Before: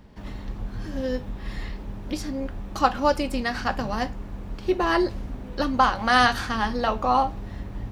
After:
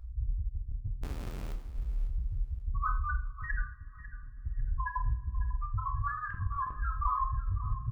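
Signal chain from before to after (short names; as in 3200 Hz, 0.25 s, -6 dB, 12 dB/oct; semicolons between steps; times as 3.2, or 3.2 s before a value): limiter -15 dBFS, peak gain reduction 11 dB; FFT band-reject 130–1000 Hz; de-hum 241.1 Hz, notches 31; loudest bins only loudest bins 2; band shelf 550 Hz -13.5 dB; vibrato 2.7 Hz 8.1 cents; 1.03–1.53 Schmitt trigger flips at -51 dBFS; 6.26–6.79 monotone LPC vocoder at 8 kHz 200 Hz; negative-ratio compressor -40 dBFS, ratio -0.5; 3.62–4.46 vocal tract filter i; feedback echo 0.548 s, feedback 23%, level -15 dB; on a send at -3 dB: reverb, pre-delay 12 ms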